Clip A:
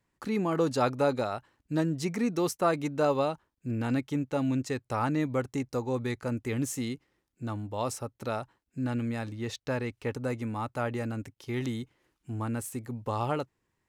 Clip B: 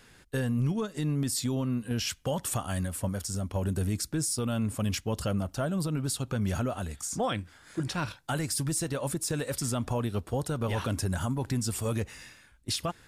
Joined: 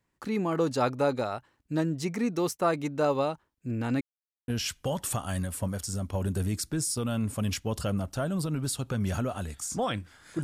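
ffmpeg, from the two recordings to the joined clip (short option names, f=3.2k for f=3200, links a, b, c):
-filter_complex "[0:a]apad=whole_dur=10.43,atrim=end=10.43,asplit=2[a][b];[a]atrim=end=4.01,asetpts=PTS-STARTPTS,afade=t=out:st=4.006:d=0.004:c=hsin[c];[b]atrim=start=4.01:end=4.48,asetpts=PTS-STARTPTS,volume=0[d];[1:a]atrim=start=1.89:end=7.84,asetpts=PTS-STARTPTS,afade=t=in:d=0.004:c=hsin[e];[c][d][e]concat=n=3:v=0:a=1"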